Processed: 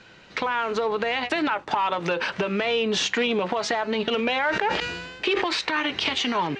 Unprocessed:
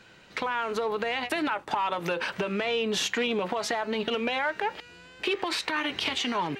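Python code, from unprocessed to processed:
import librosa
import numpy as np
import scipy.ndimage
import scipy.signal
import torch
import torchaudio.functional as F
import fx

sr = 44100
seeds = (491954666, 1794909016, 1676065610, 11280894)

y = scipy.signal.sosfilt(scipy.signal.butter(4, 6800.0, 'lowpass', fs=sr, output='sos'), x)
y = fx.sustainer(y, sr, db_per_s=41.0, at=(4.17, 5.46), fade=0.02)
y = y * 10.0 ** (4.0 / 20.0)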